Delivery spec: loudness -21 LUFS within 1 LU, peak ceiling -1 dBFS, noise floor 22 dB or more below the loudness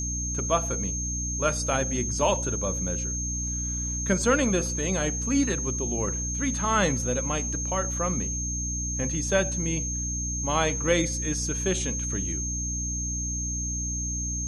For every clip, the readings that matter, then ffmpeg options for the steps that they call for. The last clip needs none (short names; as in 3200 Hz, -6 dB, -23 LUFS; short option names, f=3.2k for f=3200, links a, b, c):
hum 60 Hz; harmonics up to 300 Hz; hum level -30 dBFS; steady tone 6400 Hz; tone level -30 dBFS; loudness -26.5 LUFS; peak -9.5 dBFS; loudness target -21.0 LUFS
-> -af "bandreject=f=60:t=h:w=4,bandreject=f=120:t=h:w=4,bandreject=f=180:t=h:w=4,bandreject=f=240:t=h:w=4,bandreject=f=300:t=h:w=4"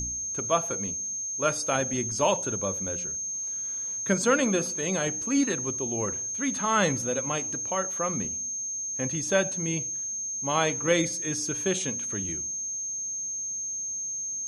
hum none; steady tone 6400 Hz; tone level -30 dBFS
-> -af "bandreject=f=6.4k:w=30"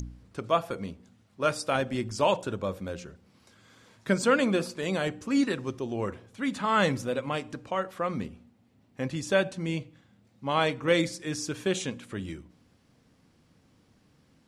steady tone none; loudness -29.0 LUFS; peak -10.0 dBFS; loudness target -21.0 LUFS
-> -af "volume=8dB"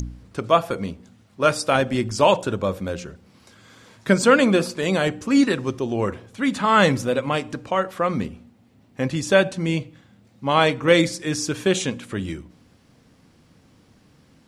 loudness -21.0 LUFS; peak -2.0 dBFS; noise floor -56 dBFS